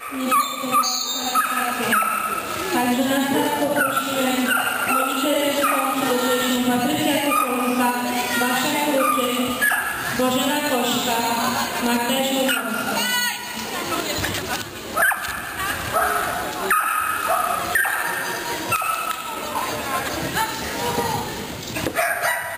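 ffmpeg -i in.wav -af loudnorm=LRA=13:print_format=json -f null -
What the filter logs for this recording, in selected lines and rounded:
"input_i" : "-21.2",
"input_tp" : "-8.8",
"input_lra" : "3.8",
"input_thresh" : "-31.2",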